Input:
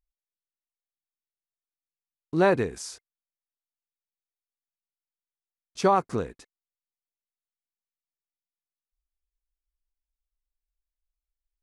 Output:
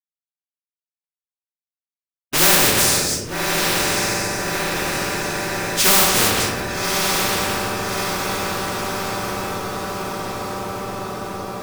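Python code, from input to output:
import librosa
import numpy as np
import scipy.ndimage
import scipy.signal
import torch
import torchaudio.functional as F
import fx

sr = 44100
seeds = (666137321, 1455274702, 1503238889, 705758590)

y = fx.reverse_delay(x, sr, ms=165, wet_db=-11.5)
y = fx.highpass(y, sr, hz=61.0, slope=6)
y = fx.low_shelf(y, sr, hz=160.0, db=3.0)
y = fx.quant_companded(y, sr, bits=4)
y = fx.echo_diffused(y, sr, ms=1219, feedback_pct=56, wet_db=-12)
y = fx.room_shoebox(y, sr, seeds[0], volume_m3=100.0, walls='mixed', distance_m=2.7)
y = fx.spectral_comp(y, sr, ratio=4.0)
y = F.gain(torch.from_numpy(y), -5.0).numpy()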